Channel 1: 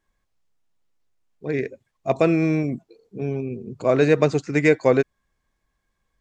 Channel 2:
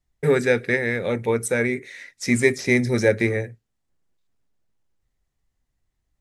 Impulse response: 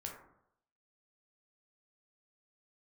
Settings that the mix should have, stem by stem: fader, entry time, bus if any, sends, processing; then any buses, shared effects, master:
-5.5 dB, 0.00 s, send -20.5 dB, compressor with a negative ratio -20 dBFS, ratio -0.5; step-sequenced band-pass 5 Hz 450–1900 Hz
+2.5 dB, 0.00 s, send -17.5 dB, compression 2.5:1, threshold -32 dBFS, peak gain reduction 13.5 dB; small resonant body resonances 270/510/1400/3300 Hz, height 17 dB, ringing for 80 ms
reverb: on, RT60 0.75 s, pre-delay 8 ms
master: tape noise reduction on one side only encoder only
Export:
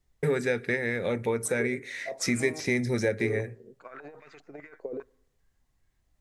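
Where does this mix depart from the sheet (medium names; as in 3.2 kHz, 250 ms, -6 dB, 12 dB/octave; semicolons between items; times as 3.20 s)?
stem 2: missing small resonant body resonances 270/510/1400/3300 Hz, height 17 dB, ringing for 80 ms; master: missing tape noise reduction on one side only encoder only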